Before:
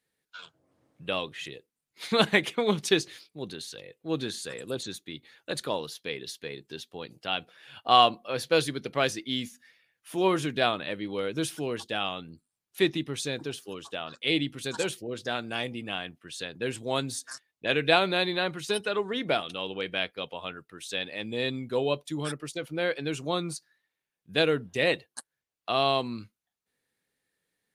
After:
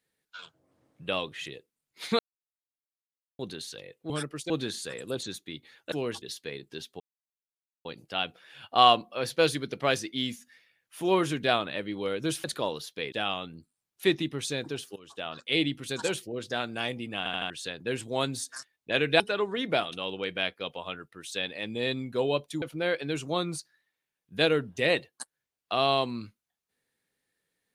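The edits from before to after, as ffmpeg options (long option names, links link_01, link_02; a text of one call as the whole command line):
ffmpeg -i in.wav -filter_complex "[0:a]asplit=17[link_01][link_02][link_03][link_04][link_05][link_06][link_07][link_08][link_09][link_10][link_11][link_12][link_13][link_14][link_15][link_16][link_17];[link_01]atrim=end=2.19,asetpts=PTS-STARTPTS,afade=type=out:start_time=2.186:duration=0.004:curve=hsin[link_18];[link_02]atrim=start=2.19:end=3.39,asetpts=PTS-STARTPTS,volume=0[link_19];[link_03]atrim=start=3.39:end=4.102,asetpts=PTS-STARTPTS,afade=type=in:duration=0.004:curve=hsin[link_20];[link_04]atrim=start=22.188:end=22.592[link_21];[link_05]atrim=start=4.098:end=5.522[link_22];[link_06]atrim=start=11.568:end=11.872[link_23];[link_07]atrim=start=6.198:end=6.98,asetpts=PTS-STARTPTS,afade=type=out:start_time=0.778:duration=0.004:curve=hsin,apad=pad_dur=0.85[link_24];[link_08]atrim=start=6.98:end=11.572,asetpts=PTS-STARTPTS,afade=type=in:duration=0.004:curve=hsin[link_25];[link_09]atrim=start=5.518:end=6.202[link_26];[link_10]atrim=start=11.868:end=13.71,asetpts=PTS-STARTPTS,afade=type=out:start_time=1.838:duration=0.004:curve=hsin:silence=0.1[link_27];[link_11]atrim=start=13.71:end=16.012,asetpts=PTS-STARTPTS,afade=type=in:duration=0.31:silence=0.1[link_28];[link_12]atrim=start=15.928:end=16.012[link_29];[link_13]atrim=start=15.928:end=16.012[link_30];[link_14]atrim=start=15.928:end=16.012[link_31];[link_15]atrim=start=16.248:end=17.952[link_32];[link_16]atrim=start=18.768:end=22.192[link_33];[link_17]atrim=start=22.588[link_34];[link_18][link_19][link_20]concat=n=3:v=0:a=1[link_35];[link_35][link_21]acrossfade=duration=0.004:curve1=hsin:curve2=hsin[link_36];[link_36][link_22]acrossfade=duration=0.004:curve1=hsin:curve2=hsin[link_37];[link_37][link_23]acrossfade=duration=0.004:curve1=hsin:curve2=hsin[link_38];[link_24][link_25]concat=n=2:v=0:a=1[link_39];[link_38][link_39]acrossfade=duration=0.004:curve1=hsin:curve2=hsin[link_40];[link_40][link_26]acrossfade=duration=0.004:curve1=hsin:curve2=hsin[link_41];[link_27][link_28]concat=n=2:v=0:a=1[link_42];[link_41][link_42]acrossfade=duration=0.004:curve1=hsin:curve2=hsin[link_43];[link_43][link_29]acrossfade=duration=0.004:curve1=hsin:curve2=hsin[link_44];[link_44][link_30]acrossfade=duration=0.004:curve1=hsin:curve2=hsin[link_45];[link_45][link_31]acrossfade=duration=0.004:curve1=hsin:curve2=hsin[link_46];[link_46][link_32]acrossfade=duration=0.004:curve1=hsin:curve2=hsin[link_47];[link_47][link_33]acrossfade=duration=0.004:curve1=hsin:curve2=hsin[link_48];[link_48][link_34]acrossfade=duration=0.004:curve1=hsin:curve2=hsin" out.wav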